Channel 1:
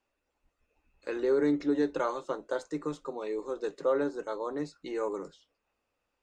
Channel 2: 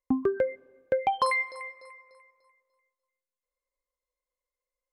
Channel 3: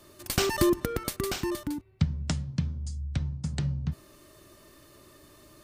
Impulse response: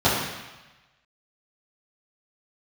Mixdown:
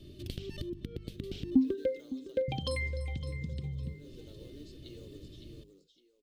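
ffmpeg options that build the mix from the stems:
-filter_complex "[0:a]highshelf=f=4.4k:g=10,acompressor=threshold=-37dB:ratio=4,acrusher=bits=5:mode=log:mix=0:aa=0.000001,volume=-10.5dB,asplit=2[a][b];[b]volume=-6.5dB[c];[1:a]aecho=1:1:3.7:0.65,adelay=1450,volume=-2dB,asplit=2[d][e];[e]volume=-14.5dB[f];[2:a]bass=f=250:g=11,treble=f=4k:g=-12,acompressor=threshold=-26dB:ratio=6,volume=1dB,asplit=3[g][h][i];[g]atrim=end=1.55,asetpts=PTS-STARTPTS,afade=t=out:st=1.546:d=0.004:c=hsin[j];[h]atrim=start=1.55:end=2.48,asetpts=PTS-STARTPTS,volume=0[k];[i]atrim=start=2.48,asetpts=PTS-STARTPTS,afade=t=in:d=0.004:c=hsin[l];[j][k][l]concat=n=3:v=0:a=1[m];[a][m]amix=inputs=2:normalize=0,bandreject=f=50:t=h:w=6,bandreject=f=100:t=h:w=6,bandreject=f=150:t=h:w=6,bandreject=f=200:t=h:w=6,acompressor=threshold=-34dB:ratio=12,volume=0dB[n];[c][f]amix=inputs=2:normalize=0,aecho=0:1:560|1120|1680|2240:1|0.25|0.0625|0.0156[o];[d][n][o]amix=inputs=3:normalize=0,firequalizer=gain_entry='entry(370,0);entry(950,-26);entry(3200,7);entry(6900,-4)':delay=0.05:min_phase=1"

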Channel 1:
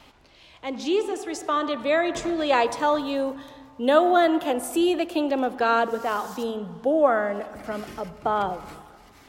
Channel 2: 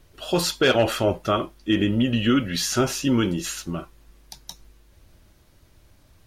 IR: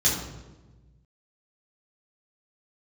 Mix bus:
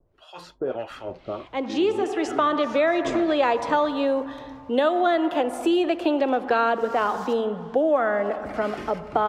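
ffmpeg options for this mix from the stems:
-filter_complex "[0:a]dynaudnorm=f=200:g=9:m=7dB,adelay=900,volume=2dB[a];[1:a]acrossover=split=920[b][c];[b]aeval=exprs='val(0)*(1-1/2+1/2*cos(2*PI*1.6*n/s))':c=same[d];[c]aeval=exprs='val(0)*(1-1/2-1/2*cos(2*PI*1.6*n/s))':c=same[e];[d][e]amix=inputs=2:normalize=0,equalizer=f=740:t=o:w=2.9:g=7.5,volume=-12dB[f];[a][f]amix=inputs=2:normalize=0,aemphasis=mode=reproduction:type=75fm,acrossover=split=270|2200[g][h][i];[g]acompressor=threshold=-40dB:ratio=4[j];[h]acompressor=threshold=-20dB:ratio=4[k];[i]acompressor=threshold=-32dB:ratio=4[l];[j][k][l]amix=inputs=3:normalize=0,adynamicequalizer=threshold=0.0126:dfrequency=2900:dqfactor=0.7:tfrequency=2900:tqfactor=0.7:attack=5:release=100:ratio=0.375:range=1.5:mode=cutabove:tftype=highshelf"

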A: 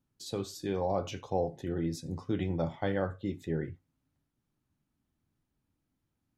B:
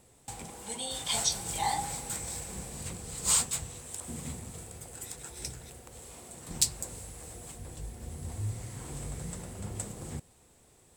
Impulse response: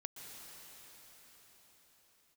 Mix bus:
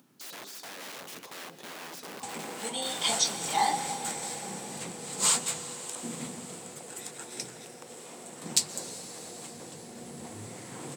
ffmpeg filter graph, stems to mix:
-filter_complex "[0:a]acompressor=threshold=-35dB:ratio=12,aeval=exprs='(mod(119*val(0)+1,2)-1)/119':c=same,volume=1.5dB,asplit=2[a][b];[b]volume=-4.5dB[c];[1:a]highshelf=f=9.2k:g=-10.5,adelay=1950,volume=2dB,asplit=2[d][e];[e]volume=-3dB[f];[2:a]atrim=start_sample=2205[g];[c][f]amix=inputs=2:normalize=0[h];[h][g]afir=irnorm=-1:irlink=0[i];[a][d][i]amix=inputs=3:normalize=0,highpass=f=180:w=0.5412,highpass=f=180:w=1.3066,acompressor=mode=upward:threshold=-50dB:ratio=2.5"

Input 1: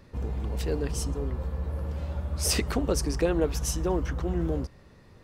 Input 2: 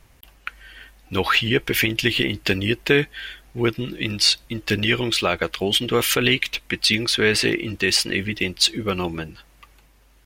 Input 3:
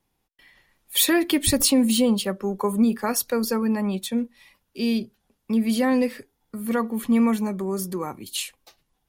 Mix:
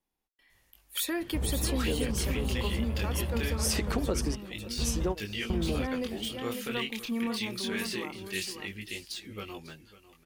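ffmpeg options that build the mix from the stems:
-filter_complex "[0:a]adelay=1200,volume=1dB,asplit=2[a][b];[b]volume=-23dB[c];[1:a]deesser=0.45,highshelf=f=4.2k:g=11.5,flanger=delay=19:depth=7.4:speed=0.23,adelay=500,volume=-14.5dB,asplit=2[d][e];[e]volume=-17dB[f];[2:a]equalizer=f=120:t=o:w=0.53:g=-14,volume=-11.5dB,asplit=3[g][h][i];[h]volume=-6.5dB[j];[i]apad=whole_len=283666[k];[a][k]sidechaingate=range=-33dB:threshold=-51dB:ratio=16:detection=peak[l];[c][f][j]amix=inputs=3:normalize=0,aecho=0:1:548:1[m];[l][d][g][m]amix=inputs=4:normalize=0,acompressor=threshold=-25dB:ratio=6"

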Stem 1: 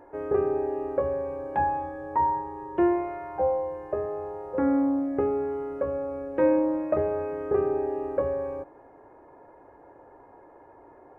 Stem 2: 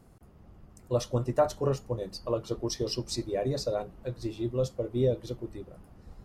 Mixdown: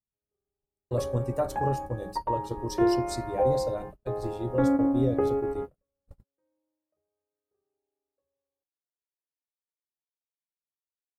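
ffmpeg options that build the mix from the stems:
-filter_complex "[0:a]dynaudnorm=f=410:g=11:m=7dB,volume=-6.5dB[a];[1:a]agate=range=-44dB:threshold=-43dB:ratio=16:detection=peak,lowshelf=f=230:g=8,aexciter=amount=2.3:drive=6.7:freq=7.9k,volume=-5dB,asplit=2[b][c];[c]apad=whole_len=493429[d];[a][d]sidechaingate=range=-59dB:threshold=-41dB:ratio=16:detection=peak[e];[e][b]amix=inputs=2:normalize=0"

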